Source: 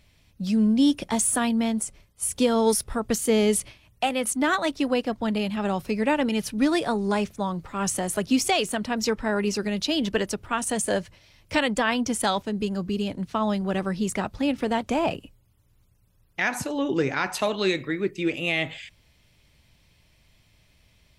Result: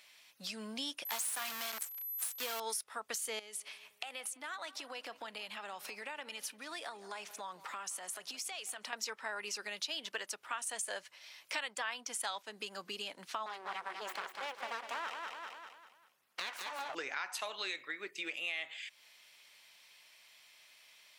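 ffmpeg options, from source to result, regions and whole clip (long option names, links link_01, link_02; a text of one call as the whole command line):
ffmpeg -i in.wav -filter_complex "[0:a]asettb=1/sr,asplit=3[link_01][link_02][link_03];[link_01]atrim=end=1.054[link_04];[link_02]atrim=start=1.05:end=2.6,asetpts=PTS-STARTPTS,afade=type=in:duration=0.004:curve=qsin,afade=type=out:start_time=1.546:duration=0.004:curve=qsin,acrusher=bits=5:dc=4:mix=0:aa=0.000001,aeval=exprs='val(0)+0.0158*sin(2*PI*12000*n/s)':channel_layout=same[link_05];[link_03]atrim=start=2.596[link_06];[link_04][link_05]acrossfade=duration=0.004:curve1=hsin:curve2=qsin[link_07];[link_07][link_06]acrossfade=duration=0.004:curve1=qsin:curve2=hsin,asettb=1/sr,asplit=3[link_08][link_09][link_10];[link_08]atrim=end=3.394[link_11];[link_09]atrim=start=3.39:end=8.93,asetpts=PTS-STARTPTS,afade=type=in:duration=0.004:curve=qsin,afade=type=out:start_time=5.536:duration=0.004:curve=qsin,acompressor=threshold=-32dB:ratio=20:attack=3.2:release=140:knee=1:detection=peak,asplit=2[link_12][link_13];[link_13]adelay=172,lowpass=frequency=2300:poles=1,volume=-18dB,asplit=2[link_14][link_15];[link_15]adelay=172,lowpass=frequency=2300:poles=1,volume=0.48,asplit=2[link_16][link_17];[link_17]adelay=172,lowpass=frequency=2300:poles=1,volume=0.48,asplit=2[link_18][link_19];[link_19]adelay=172,lowpass=frequency=2300:poles=1,volume=0.48[link_20];[link_12][link_14][link_16][link_18][link_20]amix=inputs=5:normalize=0,atrim=end_sample=244314[link_21];[link_10]atrim=start=8.926[link_22];[link_11][link_21]acrossfade=duration=0.004:curve1=hsin:curve2=qsin[link_23];[link_23][link_22]acrossfade=duration=0.004:curve1=qsin:curve2=hsin,asettb=1/sr,asplit=3[link_24][link_25][link_26];[link_24]atrim=end=13.464[link_27];[link_25]atrim=start=13.46:end=16.95,asetpts=PTS-STARTPTS,afade=type=in:duration=0.004:curve=qsin,afade=type=out:start_time=3.486:duration=0.004:curve=qsin,aeval=exprs='abs(val(0))':channel_layout=same,highshelf=frequency=3700:gain=-9.5,aecho=1:1:197|394|591|788|985:0.447|0.179|0.0715|0.0286|0.0114,atrim=end_sample=153909[link_28];[link_26]atrim=start=16.946[link_29];[link_27][link_28]acrossfade=duration=0.004:curve1=hsin:curve2=qsin[link_30];[link_30][link_29]acrossfade=duration=0.004:curve1=qsin:curve2=hsin,highpass=1000,acompressor=threshold=-46dB:ratio=3,volume=4.5dB" out.wav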